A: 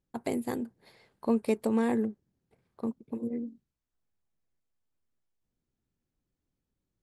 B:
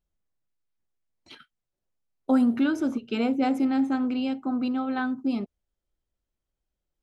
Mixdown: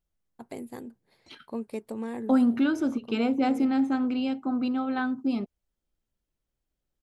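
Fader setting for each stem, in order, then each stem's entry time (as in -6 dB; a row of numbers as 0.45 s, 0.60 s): -7.5 dB, -0.5 dB; 0.25 s, 0.00 s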